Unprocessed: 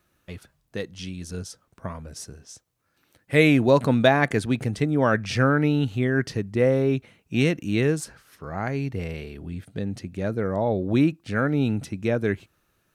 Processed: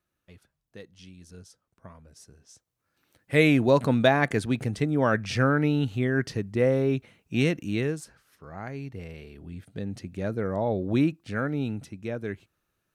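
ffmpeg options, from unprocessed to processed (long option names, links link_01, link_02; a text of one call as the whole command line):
ffmpeg -i in.wav -af "volume=3.5dB,afade=type=in:start_time=2.2:duration=1.15:silence=0.281838,afade=type=out:start_time=7.59:duration=0.43:silence=0.473151,afade=type=in:start_time=9.15:duration=0.96:silence=0.501187,afade=type=out:start_time=10.98:duration=0.97:silence=0.501187" out.wav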